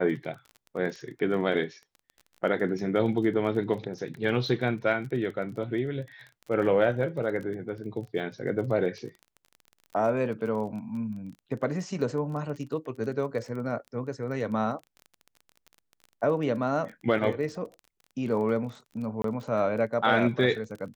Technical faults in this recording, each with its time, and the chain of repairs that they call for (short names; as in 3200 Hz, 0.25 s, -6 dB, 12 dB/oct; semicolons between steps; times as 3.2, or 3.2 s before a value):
crackle 23/s -37 dBFS
19.22–19.24 gap 23 ms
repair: de-click; interpolate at 19.22, 23 ms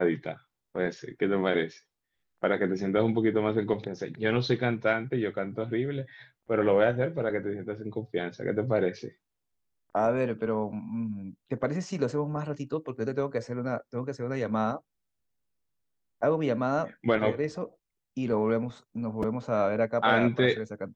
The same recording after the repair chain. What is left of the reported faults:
none